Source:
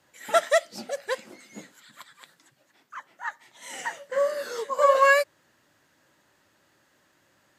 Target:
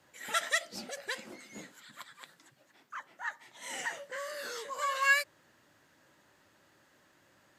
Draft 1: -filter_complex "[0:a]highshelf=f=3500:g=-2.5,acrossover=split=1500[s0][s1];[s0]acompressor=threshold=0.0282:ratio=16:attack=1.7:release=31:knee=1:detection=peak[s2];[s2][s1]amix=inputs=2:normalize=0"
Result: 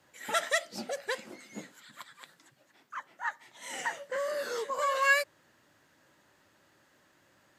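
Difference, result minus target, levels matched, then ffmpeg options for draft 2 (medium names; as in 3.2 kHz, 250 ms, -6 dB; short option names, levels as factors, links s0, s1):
compression: peak gain reduction -10.5 dB
-filter_complex "[0:a]highshelf=f=3500:g=-2.5,acrossover=split=1500[s0][s1];[s0]acompressor=threshold=0.00794:ratio=16:attack=1.7:release=31:knee=1:detection=peak[s2];[s2][s1]amix=inputs=2:normalize=0"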